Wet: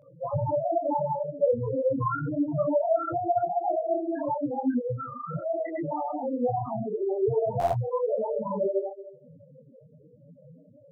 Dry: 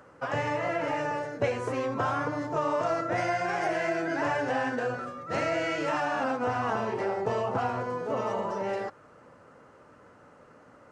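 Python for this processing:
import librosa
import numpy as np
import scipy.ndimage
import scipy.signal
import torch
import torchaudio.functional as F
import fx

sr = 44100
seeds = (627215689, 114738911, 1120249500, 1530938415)

p1 = fx.tracing_dist(x, sr, depth_ms=0.032)
p2 = fx.peak_eq(p1, sr, hz=150.0, db=8.0, octaves=0.75)
p3 = p2 + fx.echo_feedback(p2, sr, ms=179, feedback_pct=42, wet_db=-16.0, dry=0)
p4 = fx.rider(p3, sr, range_db=10, speed_s=2.0)
p5 = np.clip(10.0 ** (22.5 / 20.0) * p4, -1.0, 1.0) / 10.0 ** (22.5 / 20.0)
p6 = p4 + (p5 * 10.0 ** (-7.0 / 20.0))
p7 = fx.spec_topn(p6, sr, count=2)
p8 = fx.peak_eq(p7, sr, hz=540.0, db=-6.5, octaves=1.2, at=(4.3, 5.88), fade=0.02)
p9 = fx.buffer_glitch(p8, sr, at_s=(7.59,), block=512, repeats=10)
p10 = fx.detune_double(p9, sr, cents=37)
y = p10 * 10.0 ** (8.0 / 20.0)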